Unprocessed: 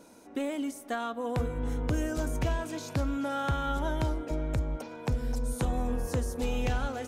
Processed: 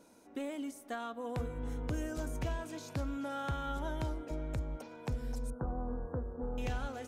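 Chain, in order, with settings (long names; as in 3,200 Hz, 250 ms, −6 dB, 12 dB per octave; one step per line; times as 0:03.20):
0:05.50–0:06.58: elliptic low-pass filter 1,500 Hz, stop band 40 dB
level −7 dB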